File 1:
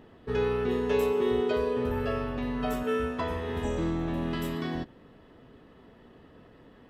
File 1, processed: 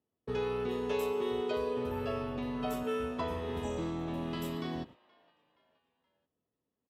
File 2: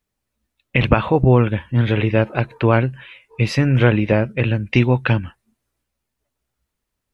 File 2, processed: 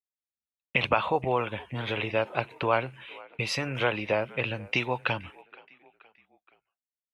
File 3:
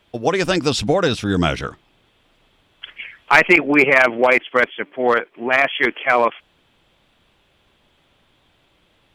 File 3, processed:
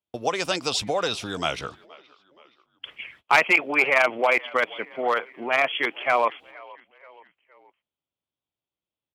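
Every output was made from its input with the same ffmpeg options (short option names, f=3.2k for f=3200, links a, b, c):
-filter_complex "[0:a]agate=range=-31dB:threshold=-44dB:ratio=16:detection=peak,highpass=67,equalizer=f=1.7k:w=2.4:g=-7,acrossover=split=560|4500[a][b][c];[a]acompressor=threshold=-31dB:ratio=10[d];[b]asplit=4[e][f][g][h];[f]adelay=473,afreqshift=-54,volume=-21.5dB[i];[g]adelay=946,afreqshift=-108,volume=-27.7dB[j];[h]adelay=1419,afreqshift=-162,volume=-33.9dB[k];[e][i][j][k]amix=inputs=4:normalize=0[l];[d][l][c]amix=inputs=3:normalize=0,volume=-2.5dB"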